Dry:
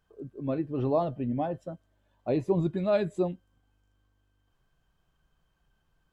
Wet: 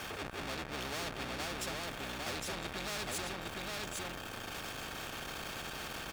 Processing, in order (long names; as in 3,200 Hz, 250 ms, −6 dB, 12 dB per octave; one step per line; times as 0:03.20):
sub-octave generator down 2 octaves, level +4 dB
downward compressor, threshold −34 dBFS, peak gain reduction 15 dB
low-shelf EQ 410 Hz −9.5 dB
power curve on the samples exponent 0.5
high-shelf EQ 3,600 Hz −9 dB
notch comb filter 1,000 Hz
on a send: single-tap delay 809 ms −5 dB
on the sum: every bin compressed towards the loudest bin 4 to 1
level +2 dB